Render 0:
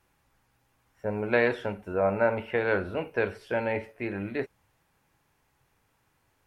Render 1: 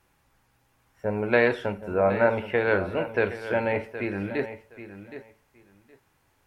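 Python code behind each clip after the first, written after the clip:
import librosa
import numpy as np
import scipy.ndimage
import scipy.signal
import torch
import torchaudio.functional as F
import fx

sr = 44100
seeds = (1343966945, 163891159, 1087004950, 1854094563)

y = fx.echo_feedback(x, sr, ms=769, feedback_pct=17, wet_db=-12.5)
y = F.gain(torch.from_numpy(y), 3.0).numpy()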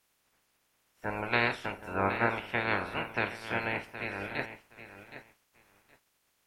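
y = fx.spec_clip(x, sr, under_db=22)
y = F.gain(torch.from_numpy(y), -7.0).numpy()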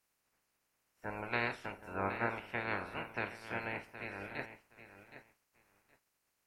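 y = fx.peak_eq(x, sr, hz=3400.0, db=-6.5, octaves=0.34)
y = F.gain(torch.from_numpy(y), -7.0).numpy()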